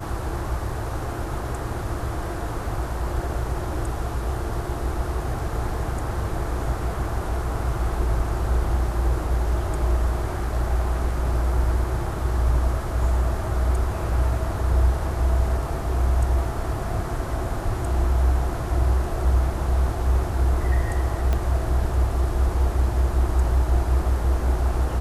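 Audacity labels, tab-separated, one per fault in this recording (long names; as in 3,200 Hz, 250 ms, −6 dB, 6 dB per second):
21.330000	21.330000	click −12 dBFS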